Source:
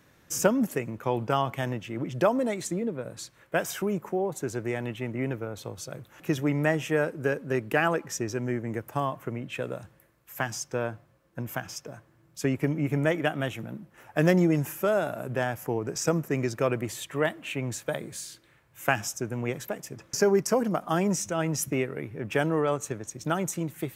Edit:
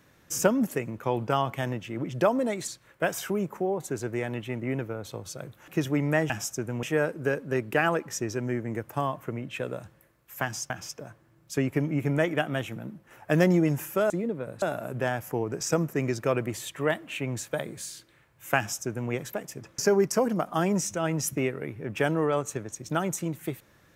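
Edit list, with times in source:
2.68–3.20 s: move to 14.97 s
10.69–11.57 s: delete
18.93–19.46 s: copy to 6.82 s

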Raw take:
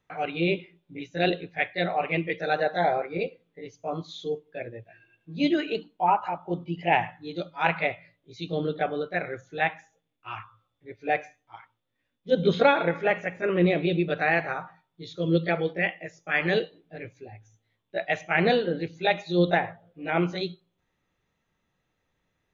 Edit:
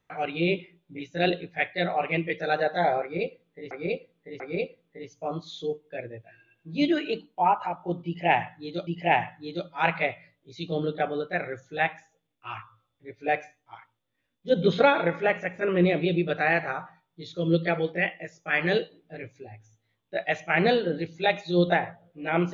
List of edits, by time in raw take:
3.02–3.71 s: loop, 3 plays
6.68–7.49 s: loop, 2 plays

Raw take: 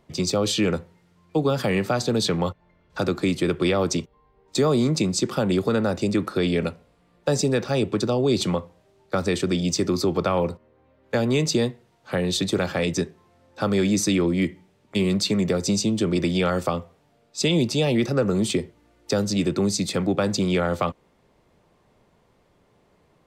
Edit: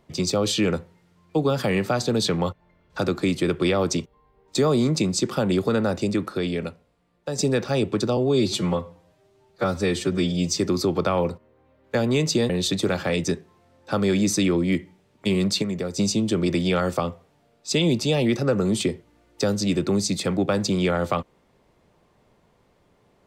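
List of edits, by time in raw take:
5.96–7.38 s: fade out quadratic, to -7.5 dB
8.17–9.78 s: stretch 1.5×
11.69–12.19 s: delete
15.32–15.68 s: gain -5.5 dB

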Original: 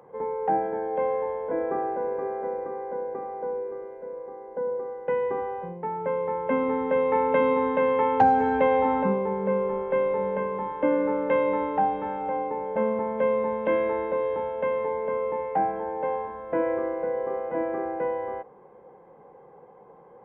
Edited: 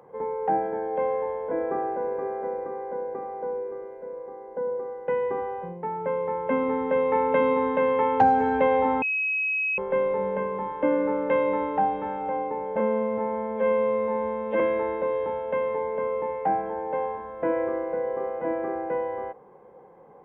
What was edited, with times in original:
9.02–9.78 s: bleep 2.55 kHz -23 dBFS
12.80–13.70 s: stretch 2×

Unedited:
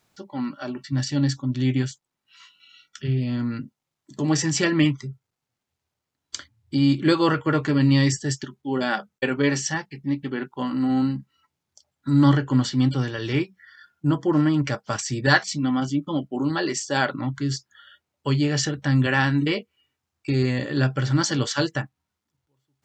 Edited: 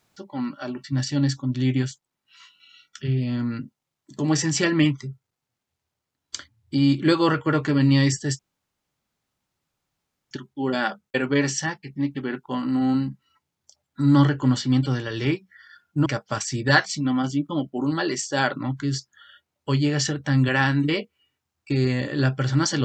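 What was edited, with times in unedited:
8.39 s: insert room tone 1.92 s
14.14–14.64 s: delete

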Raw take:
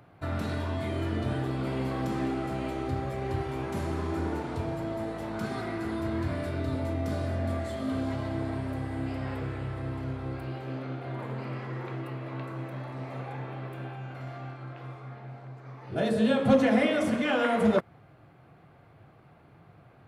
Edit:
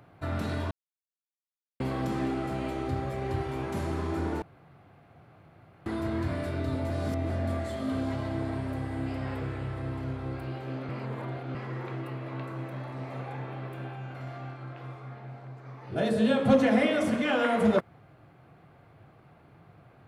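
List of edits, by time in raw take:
0.71–1.80 s: mute
4.42–5.86 s: room tone
6.90–7.30 s: reverse
10.89–11.55 s: reverse

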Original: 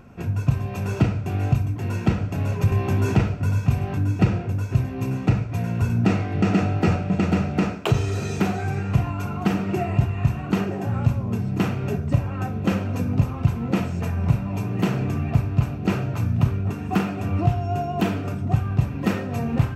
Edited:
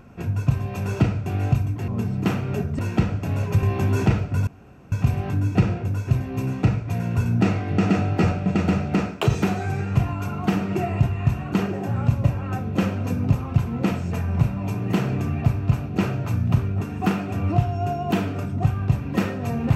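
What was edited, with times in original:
3.56 s: insert room tone 0.45 s
7.99–8.33 s: delete
11.22–12.13 s: move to 1.88 s

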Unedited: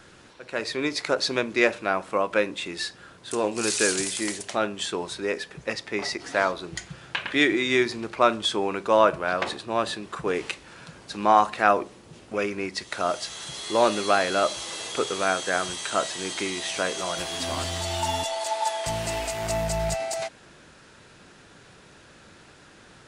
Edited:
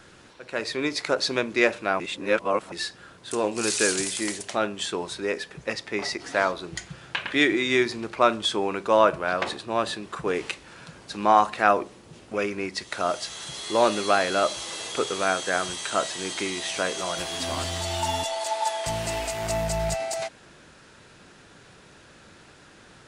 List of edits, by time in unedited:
2.00–2.72 s: reverse

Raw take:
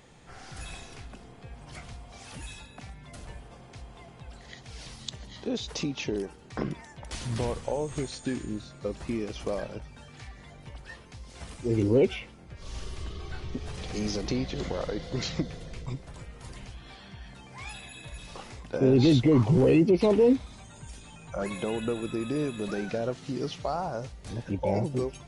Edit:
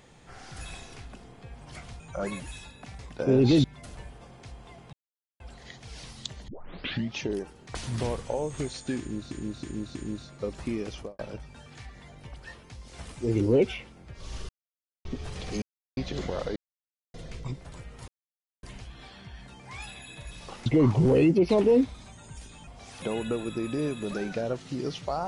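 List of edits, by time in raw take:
2.00–2.35 s: swap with 21.19–21.59 s
4.23 s: insert silence 0.47 s
5.31 s: tape start 0.70 s
6.58–7.13 s: delete
8.37–8.69 s: loop, 4 plays
9.34–9.61 s: studio fade out
12.91–13.47 s: mute
14.04–14.39 s: mute
14.98–15.56 s: mute
16.50 s: insert silence 0.55 s
18.53–19.18 s: move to 2.94 s

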